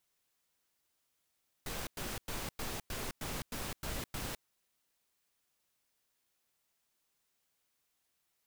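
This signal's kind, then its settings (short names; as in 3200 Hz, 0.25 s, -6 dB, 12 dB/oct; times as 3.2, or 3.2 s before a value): noise bursts pink, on 0.21 s, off 0.10 s, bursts 9, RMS -39.5 dBFS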